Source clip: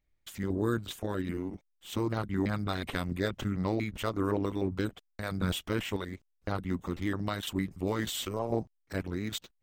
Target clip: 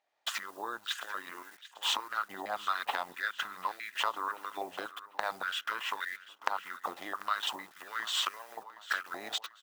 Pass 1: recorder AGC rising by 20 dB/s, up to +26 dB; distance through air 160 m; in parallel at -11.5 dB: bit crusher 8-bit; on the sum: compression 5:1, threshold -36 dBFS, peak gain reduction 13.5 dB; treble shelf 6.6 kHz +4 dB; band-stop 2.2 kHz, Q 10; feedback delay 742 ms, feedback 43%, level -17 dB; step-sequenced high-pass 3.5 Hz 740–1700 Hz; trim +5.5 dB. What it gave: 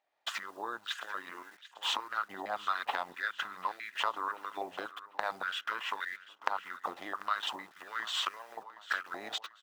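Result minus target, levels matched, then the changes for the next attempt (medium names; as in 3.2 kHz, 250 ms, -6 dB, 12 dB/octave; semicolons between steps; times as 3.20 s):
8 kHz band -4.5 dB
change: treble shelf 6.6 kHz +14.5 dB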